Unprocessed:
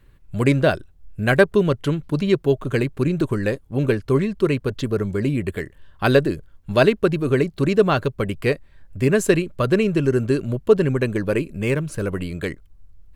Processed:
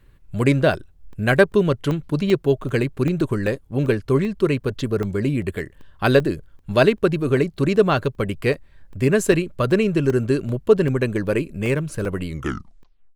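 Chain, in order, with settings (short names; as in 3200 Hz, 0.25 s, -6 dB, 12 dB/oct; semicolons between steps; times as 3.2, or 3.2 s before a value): tape stop at the end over 0.89 s; crackling interface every 0.39 s, samples 64, zero, from 0.74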